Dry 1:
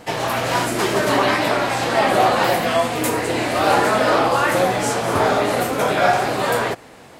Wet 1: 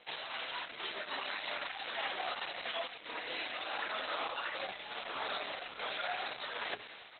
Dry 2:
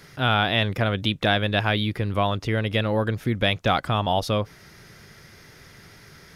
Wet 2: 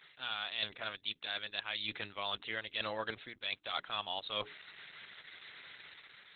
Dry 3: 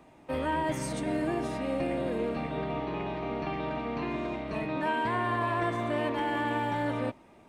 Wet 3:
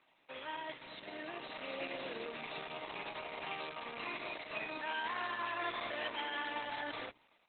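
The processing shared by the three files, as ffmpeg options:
-filter_complex "[0:a]highpass=f=61:w=0.5412,highpass=f=61:w=1.3066,aderivative,bandreject=f=60:t=h:w=6,bandreject=f=120:t=h:w=6,bandreject=f=180:t=h:w=6,bandreject=f=240:t=h:w=6,bandreject=f=300:t=h:w=6,bandreject=f=360:t=h:w=6,bandreject=f=420:t=h:w=6,dynaudnorm=f=980:g=3:m=7dB,asplit=2[a][b];[b]aeval=exprs='sgn(val(0))*max(abs(val(0))-0.0266,0)':c=same,volume=-8.5dB[c];[a][c]amix=inputs=2:normalize=0,equalizer=f=9.3k:w=3.7:g=-4.5,areverse,acompressor=threshold=-38dB:ratio=10,areverse,volume=6dB" -ar 48000 -c:a libopus -b:a 8k

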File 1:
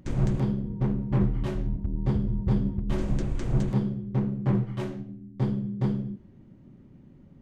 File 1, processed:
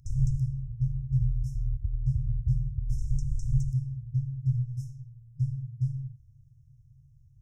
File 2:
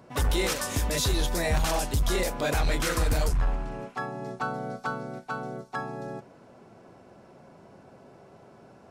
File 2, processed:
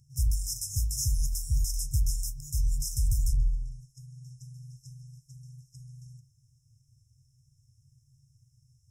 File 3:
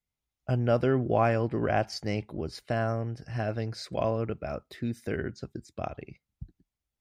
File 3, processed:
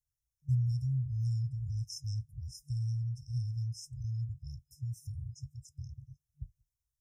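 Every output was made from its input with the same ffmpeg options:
-af "afftfilt=real='re*(1-between(b*sr/4096,150,5100))':imag='im*(1-between(b*sr/4096,150,5100))':win_size=4096:overlap=0.75"

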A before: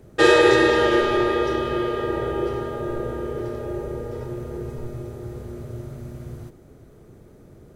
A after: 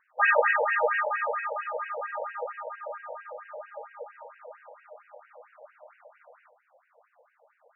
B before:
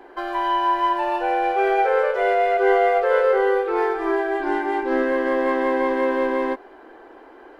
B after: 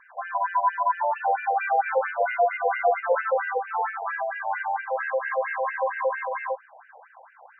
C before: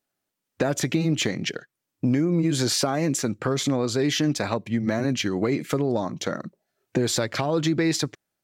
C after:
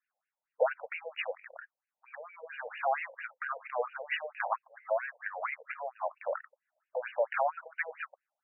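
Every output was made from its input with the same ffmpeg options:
-af "afftfilt=real='re*between(b*sr/1024,660*pow(2100/660,0.5+0.5*sin(2*PI*4.4*pts/sr))/1.41,660*pow(2100/660,0.5+0.5*sin(2*PI*4.4*pts/sr))*1.41)':imag='im*between(b*sr/1024,660*pow(2100/660,0.5+0.5*sin(2*PI*4.4*pts/sr))/1.41,660*pow(2100/660,0.5+0.5*sin(2*PI*4.4*pts/sr))*1.41)':win_size=1024:overlap=0.75,volume=1dB"

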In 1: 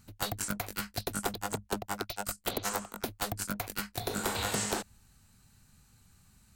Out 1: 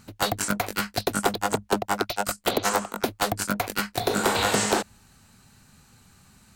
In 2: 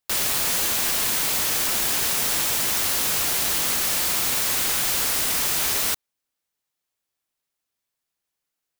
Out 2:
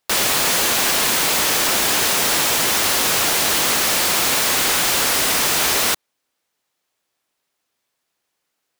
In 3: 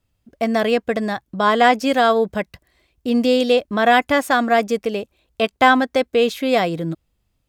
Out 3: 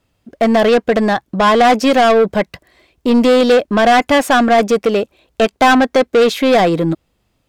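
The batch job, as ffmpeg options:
-filter_complex "[0:a]tiltshelf=f=630:g=5.5,asplit=2[a][b];[b]highpass=f=720:p=1,volume=21dB,asoftclip=type=tanh:threshold=-3dB[c];[a][c]amix=inputs=2:normalize=0,lowpass=f=6.6k:p=1,volume=-6dB"

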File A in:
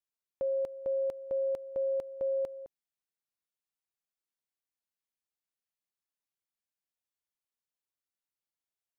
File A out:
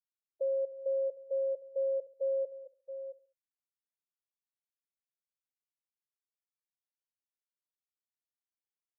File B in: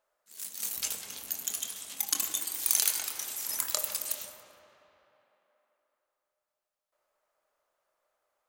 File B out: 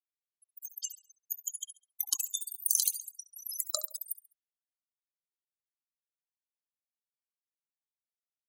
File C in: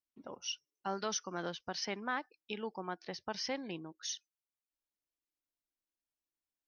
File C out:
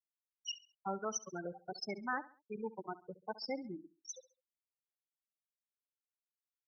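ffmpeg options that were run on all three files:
-filter_complex "[0:a]asplit=2[a][b];[b]adelay=673,lowpass=f=4.6k:p=1,volume=-10.5dB,asplit=2[c][d];[d]adelay=673,lowpass=f=4.6k:p=1,volume=0.3,asplit=2[e][f];[f]adelay=673,lowpass=f=4.6k:p=1,volume=0.3[g];[c][e][g]amix=inputs=3:normalize=0[h];[a][h]amix=inputs=2:normalize=0,afftfilt=real='re*gte(hypot(re,im),0.0501)':imag='im*gte(hypot(re,im),0.0501)':win_size=1024:overlap=0.75,asplit=2[i][j];[j]aecho=0:1:68|136|204:0.133|0.048|0.0173[k];[i][k]amix=inputs=2:normalize=0"

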